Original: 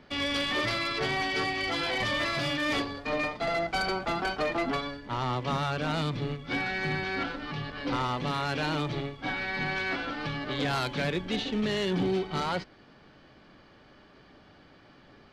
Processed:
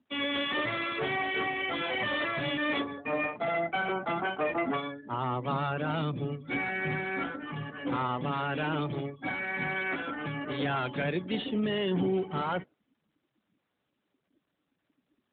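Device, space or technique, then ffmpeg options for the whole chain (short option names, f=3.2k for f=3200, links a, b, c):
mobile call with aggressive noise cancelling: -af "highpass=110,afftdn=nr=29:nf=-40" -ar 8000 -c:a libopencore_amrnb -b:a 12200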